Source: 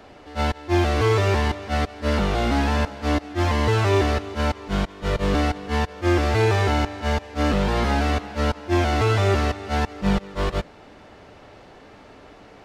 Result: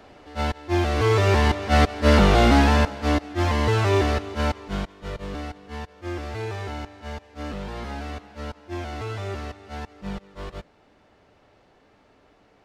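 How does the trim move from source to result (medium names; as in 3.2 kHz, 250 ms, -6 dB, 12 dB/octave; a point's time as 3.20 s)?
0.87 s -2.5 dB
1.81 s +6 dB
2.43 s +6 dB
3.28 s -1 dB
4.48 s -1 dB
5.29 s -12 dB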